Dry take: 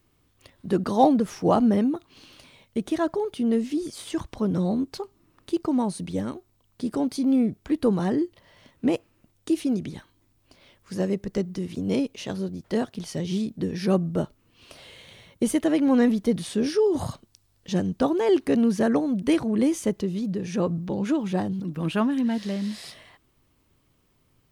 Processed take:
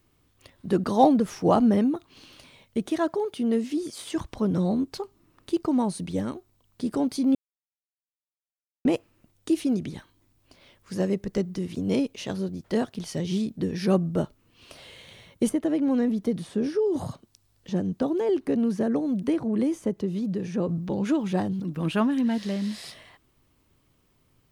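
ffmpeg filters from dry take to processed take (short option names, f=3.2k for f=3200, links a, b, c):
-filter_complex "[0:a]asettb=1/sr,asplit=3[a][b][c];[a]atrim=end=2.864[d];[b]atrim=start=2.86:end=4.16,asetpts=PTS-STARTPTS,afade=t=in:d=0.004:c=qsin,afade=t=out:st=1.296:d=0.004:c=qsin,highpass=f=160:p=1[e];[c]atrim=start=4.156[f];[d][e]acrossfade=d=0.004:c1=hsin:c2=qsin[g];[g][f]acrossfade=d=0.004:c1=qsin:c2=hsin,asettb=1/sr,asplit=3[h][i][j];[h]atrim=end=15.494[k];[i]atrim=start=15.49:end=20.69,asetpts=PTS-STARTPTS,afade=t=in:d=0.004:c=qsin,afade=t=out:st=5.196:d=0.004:c=qsin,acrossover=split=94|650|1600[l][m][n][o];[l]acompressor=threshold=-59dB:ratio=3[p];[m]acompressor=threshold=-22dB:ratio=3[q];[n]acompressor=threshold=-44dB:ratio=3[r];[o]acompressor=threshold=-51dB:ratio=3[s];[p][q][r][s]amix=inputs=4:normalize=0[t];[j]atrim=start=20.686[u];[k][t]acrossfade=d=0.004:c1=hsin:c2=qsin[v];[v][u]acrossfade=d=0.004:c1=qsin:c2=hsin,asplit=3[w][x][y];[w]atrim=end=7.35,asetpts=PTS-STARTPTS,afade=t=out:st=7.346:d=0.004:c=hsin[z];[x]atrim=start=7.35:end=8.85,asetpts=PTS-STARTPTS,volume=0[aa];[y]atrim=start=8.85,asetpts=PTS-STARTPTS,afade=t=in:d=0.004:c=hsin[ab];[z][aa][ab]concat=n=3:v=0:a=1"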